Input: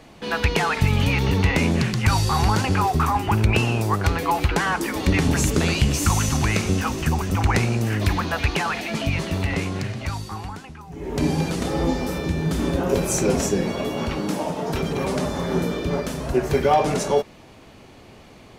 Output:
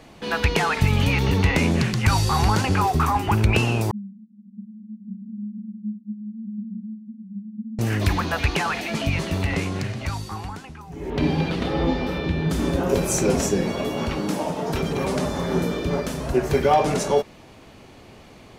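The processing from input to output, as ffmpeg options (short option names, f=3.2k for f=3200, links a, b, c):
-filter_complex "[0:a]asettb=1/sr,asplit=3[a][b][c];[a]atrim=end=3.914[d];[b]atrim=start=3.91:end=7.79,asetpts=PTS-STARTPTS,afade=t=in:d=0.004:c=qsin,afade=t=out:st=3.876:d=0.004:c=qsin,asuperpass=centerf=210:order=8:qfactor=6.1[e];[c]atrim=start=7.786[f];[d][e]acrossfade=d=0.004:c1=hsin:c2=qsin[g];[g][f]acrossfade=d=0.004:c1=qsin:c2=hsin,asettb=1/sr,asplit=3[h][i][j];[h]atrim=end=11.104[k];[i]atrim=start=11.1:end=12.5,asetpts=PTS-STARTPTS,afade=t=in:d=0.004:c=qsin,afade=t=out:st=1.396:d=0.004:c=qsin,highshelf=f=5.2k:t=q:w=1.5:g=-13.5[l];[j]atrim=start=12.496[m];[k][l]acrossfade=d=0.004:c1=hsin:c2=qsin[n];[n][m]acrossfade=d=0.004:c1=qsin:c2=hsin"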